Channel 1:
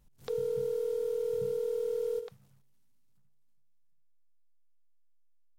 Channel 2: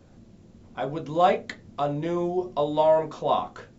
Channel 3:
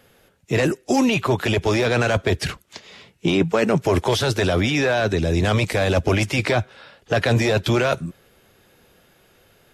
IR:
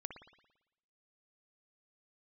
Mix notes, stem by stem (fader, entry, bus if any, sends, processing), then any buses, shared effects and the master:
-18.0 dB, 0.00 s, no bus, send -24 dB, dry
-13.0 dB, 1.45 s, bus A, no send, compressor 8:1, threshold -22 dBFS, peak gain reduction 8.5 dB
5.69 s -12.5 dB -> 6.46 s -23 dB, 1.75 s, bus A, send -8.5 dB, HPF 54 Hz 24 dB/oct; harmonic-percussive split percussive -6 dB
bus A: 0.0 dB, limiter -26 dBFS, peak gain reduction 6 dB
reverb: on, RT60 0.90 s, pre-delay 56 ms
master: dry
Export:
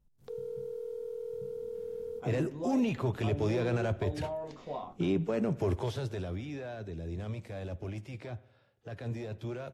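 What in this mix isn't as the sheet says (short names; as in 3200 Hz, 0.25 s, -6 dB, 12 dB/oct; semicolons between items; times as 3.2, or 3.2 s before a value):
stem 1 -18.0 dB -> -10.0 dB; master: extra tilt shelf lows +4.5 dB, about 860 Hz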